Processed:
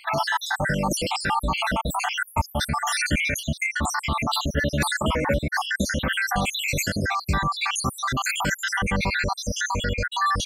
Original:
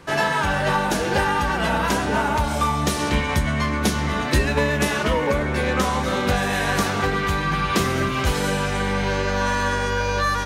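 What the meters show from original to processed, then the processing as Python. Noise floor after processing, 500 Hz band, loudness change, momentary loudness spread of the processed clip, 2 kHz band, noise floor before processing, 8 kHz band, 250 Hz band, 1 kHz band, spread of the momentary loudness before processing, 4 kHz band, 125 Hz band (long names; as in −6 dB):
−44 dBFS, −7.5 dB, −3.0 dB, 3 LU, −1.5 dB, −24 dBFS, +1.5 dB, −5.0 dB, −3.5 dB, 2 LU, 0.0 dB, −4.0 dB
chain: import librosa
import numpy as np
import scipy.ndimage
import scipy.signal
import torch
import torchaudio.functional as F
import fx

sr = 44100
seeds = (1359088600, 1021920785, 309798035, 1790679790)

p1 = fx.spec_dropout(x, sr, seeds[0], share_pct=76)
p2 = fx.peak_eq(p1, sr, hz=420.0, db=-10.5, octaves=0.44)
p3 = fx.over_compress(p2, sr, threshold_db=-33.0, ratio=-0.5)
p4 = p2 + F.gain(torch.from_numpy(p3), -1.0).numpy()
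y = F.gain(torch.from_numpy(p4), 1.0).numpy()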